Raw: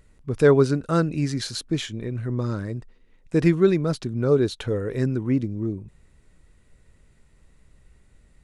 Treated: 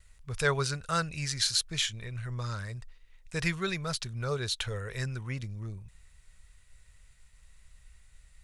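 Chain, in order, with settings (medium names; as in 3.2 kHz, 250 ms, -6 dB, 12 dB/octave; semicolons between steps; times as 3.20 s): expander -55 dBFS; amplifier tone stack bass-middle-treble 10-0-10; trim +5.5 dB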